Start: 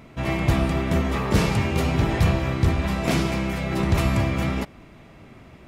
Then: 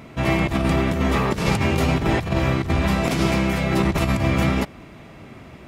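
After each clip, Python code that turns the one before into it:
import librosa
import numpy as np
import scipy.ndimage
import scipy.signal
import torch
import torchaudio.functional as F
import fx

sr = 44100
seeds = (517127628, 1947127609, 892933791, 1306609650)

y = fx.highpass(x, sr, hz=56.0, slope=6)
y = fx.over_compress(y, sr, threshold_db=-23.0, ratio=-0.5)
y = y * 10.0 ** (4.0 / 20.0)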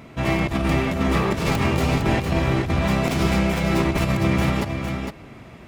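y = fx.tracing_dist(x, sr, depth_ms=0.07)
y = y + 10.0 ** (-6.0 / 20.0) * np.pad(y, (int(457 * sr / 1000.0), 0))[:len(y)]
y = y * 10.0 ** (-1.5 / 20.0)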